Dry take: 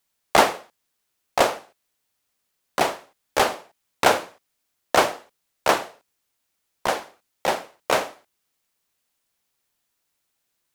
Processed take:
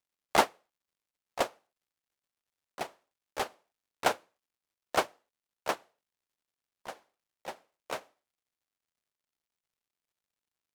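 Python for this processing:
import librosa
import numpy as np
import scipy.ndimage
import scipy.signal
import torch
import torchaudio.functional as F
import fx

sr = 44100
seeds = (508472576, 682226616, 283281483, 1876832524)

y = fx.dmg_crackle(x, sr, seeds[0], per_s=220.0, level_db=-44.0)
y = fx.upward_expand(y, sr, threshold_db=-26.0, expansion=2.5)
y = F.gain(torch.from_numpy(y), -6.0).numpy()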